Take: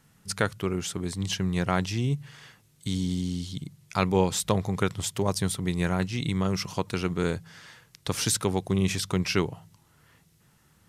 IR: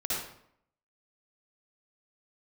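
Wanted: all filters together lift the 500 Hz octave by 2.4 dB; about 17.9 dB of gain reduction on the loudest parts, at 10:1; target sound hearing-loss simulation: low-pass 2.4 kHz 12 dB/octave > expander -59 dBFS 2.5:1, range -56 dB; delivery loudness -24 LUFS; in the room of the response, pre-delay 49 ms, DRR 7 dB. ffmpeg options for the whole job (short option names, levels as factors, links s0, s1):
-filter_complex "[0:a]equalizer=f=500:t=o:g=3,acompressor=threshold=0.0178:ratio=10,asplit=2[s0][s1];[1:a]atrim=start_sample=2205,adelay=49[s2];[s1][s2]afir=irnorm=-1:irlink=0,volume=0.211[s3];[s0][s3]amix=inputs=2:normalize=0,lowpass=2400,agate=range=0.00158:threshold=0.00112:ratio=2.5,volume=6.68"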